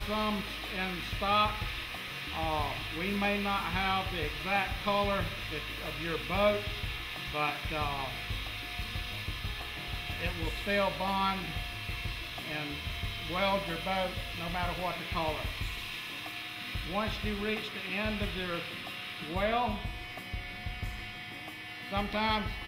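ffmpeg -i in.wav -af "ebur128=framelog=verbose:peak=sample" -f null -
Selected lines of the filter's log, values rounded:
Integrated loudness:
  I:         -33.5 LUFS
  Threshold: -43.5 LUFS
Loudness range:
  LRA:         3.9 LU
  Threshold: -53.5 LUFS
  LRA low:   -35.4 LUFS
  LRA high:  -31.5 LUFS
Sample peak:
  Peak:      -14.2 dBFS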